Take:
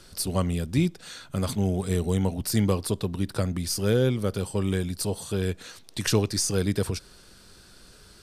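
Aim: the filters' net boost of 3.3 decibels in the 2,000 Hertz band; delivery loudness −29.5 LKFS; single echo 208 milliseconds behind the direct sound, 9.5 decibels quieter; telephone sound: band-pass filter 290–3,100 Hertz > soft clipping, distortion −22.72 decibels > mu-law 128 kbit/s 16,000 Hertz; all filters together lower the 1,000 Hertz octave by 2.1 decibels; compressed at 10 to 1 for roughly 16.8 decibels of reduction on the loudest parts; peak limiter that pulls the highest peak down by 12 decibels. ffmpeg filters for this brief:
ffmpeg -i in.wav -af "equalizer=frequency=1000:width_type=o:gain=-4.5,equalizer=frequency=2000:width_type=o:gain=6.5,acompressor=threshold=-35dB:ratio=10,alimiter=level_in=7dB:limit=-24dB:level=0:latency=1,volume=-7dB,highpass=290,lowpass=3100,aecho=1:1:208:0.335,asoftclip=threshold=-35.5dB,volume=19dB" -ar 16000 -c:a pcm_mulaw out.wav

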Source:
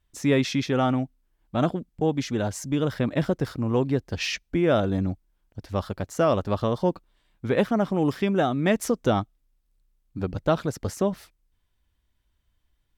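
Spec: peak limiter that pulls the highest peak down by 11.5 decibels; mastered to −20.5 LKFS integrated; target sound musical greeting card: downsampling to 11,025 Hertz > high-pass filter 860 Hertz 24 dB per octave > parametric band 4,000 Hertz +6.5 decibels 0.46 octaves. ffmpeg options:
ffmpeg -i in.wav -af "alimiter=limit=-20dB:level=0:latency=1,aresample=11025,aresample=44100,highpass=frequency=860:width=0.5412,highpass=frequency=860:width=1.3066,equalizer=frequency=4000:width_type=o:width=0.46:gain=6.5,volume=17.5dB" out.wav

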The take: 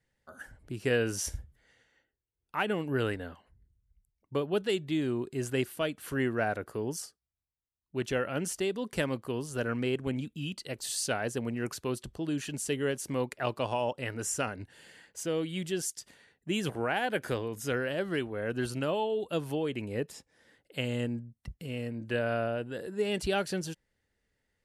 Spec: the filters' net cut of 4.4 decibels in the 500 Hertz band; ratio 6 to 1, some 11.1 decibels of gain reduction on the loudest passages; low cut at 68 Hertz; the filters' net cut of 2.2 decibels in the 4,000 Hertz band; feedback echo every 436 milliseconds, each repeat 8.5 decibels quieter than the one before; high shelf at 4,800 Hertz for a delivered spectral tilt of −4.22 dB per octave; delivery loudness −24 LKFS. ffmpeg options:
ffmpeg -i in.wav -af "highpass=68,equalizer=frequency=500:width_type=o:gain=-5.5,equalizer=frequency=4000:width_type=o:gain=-5,highshelf=frequency=4800:gain=3.5,acompressor=threshold=-39dB:ratio=6,aecho=1:1:436|872|1308|1744:0.376|0.143|0.0543|0.0206,volume=19dB" out.wav

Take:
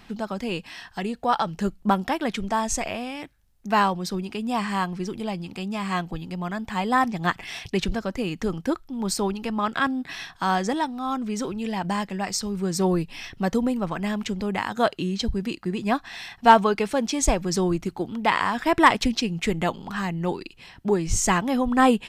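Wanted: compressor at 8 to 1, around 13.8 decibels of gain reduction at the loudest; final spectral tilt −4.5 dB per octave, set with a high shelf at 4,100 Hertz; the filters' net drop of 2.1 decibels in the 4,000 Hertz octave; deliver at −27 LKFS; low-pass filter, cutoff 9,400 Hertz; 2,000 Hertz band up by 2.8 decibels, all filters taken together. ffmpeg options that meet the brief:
ffmpeg -i in.wav -af "lowpass=9400,equalizer=frequency=2000:width_type=o:gain=4,equalizer=frequency=4000:width_type=o:gain=-6.5,highshelf=frequency=4100:gain=3.5,acompressor=threshold=-22dB:ratio=8,volume=2dB" out.wav

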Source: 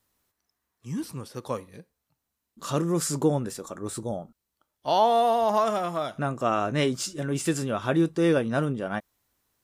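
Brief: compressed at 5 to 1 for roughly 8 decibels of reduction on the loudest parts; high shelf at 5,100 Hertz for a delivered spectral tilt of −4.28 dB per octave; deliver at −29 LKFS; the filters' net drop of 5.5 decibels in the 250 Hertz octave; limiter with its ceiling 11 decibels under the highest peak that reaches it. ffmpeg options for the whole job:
ffmpeg -i in.wav -af "equalizer=frequency=250:width_type=o:gain=-8.5,highshelf=frequency=5100:gain=6.5,acompressor=threshold=-27dB:ratio=5,volume=7.5dB,alimiter=limit=-19dB:level=0:latency=1" out.wav

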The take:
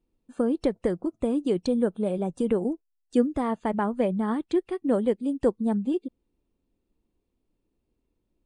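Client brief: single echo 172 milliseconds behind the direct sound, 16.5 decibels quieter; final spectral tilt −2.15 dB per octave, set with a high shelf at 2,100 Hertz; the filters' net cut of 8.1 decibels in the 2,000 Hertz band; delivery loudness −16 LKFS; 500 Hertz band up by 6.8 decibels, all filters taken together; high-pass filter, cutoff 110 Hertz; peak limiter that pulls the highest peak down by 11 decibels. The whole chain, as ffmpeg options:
ffmpeg -i in.wav -af "highpass=110,equalizer=frequency=500:width_type=o:gain=8.5,equalizer=frequency=2000:width_type=o:gain=-8,highshelf=frequency=2100:gain=-6.5,alimiter=limit=-16dB:level=0:latency=1,aecho=1:1:172:0.15,volume=10dB" out.wav

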